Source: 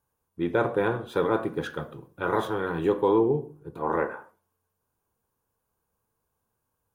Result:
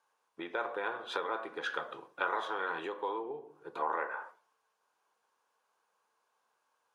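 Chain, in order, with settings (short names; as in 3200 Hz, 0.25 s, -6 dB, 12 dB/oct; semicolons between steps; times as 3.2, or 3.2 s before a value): compressor 6:1, threshold -34 dBFS, peak gain reduction 15.5 dB; BPF 770–5300 Hz; gain +8 dB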